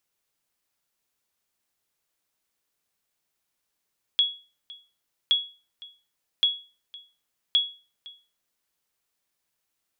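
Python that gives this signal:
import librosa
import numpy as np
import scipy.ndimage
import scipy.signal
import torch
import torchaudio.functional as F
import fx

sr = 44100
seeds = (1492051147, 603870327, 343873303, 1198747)

y = fx.sonar_ping(sr, hz=3350.0, decay_s=0.34, every_s=1.12, pings=4, echo_s=0.51, echo_db=-22.0, level_db=-13.5)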